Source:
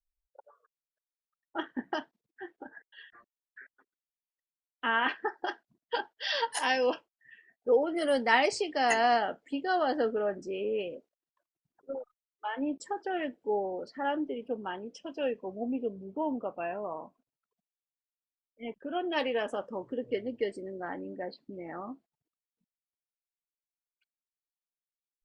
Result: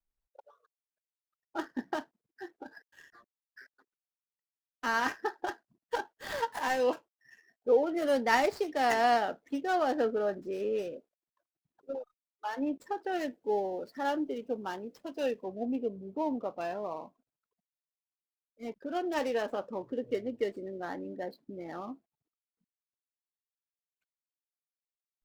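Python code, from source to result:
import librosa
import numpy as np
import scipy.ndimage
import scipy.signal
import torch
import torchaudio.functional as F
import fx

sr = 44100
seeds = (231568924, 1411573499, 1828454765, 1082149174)

y = scipy.ndimage.median_filter(x, 15, mode='constant')
y = fx.high_shelf(y, sr, hz=4400.0, db=5.5, at=(13.13, 15.44))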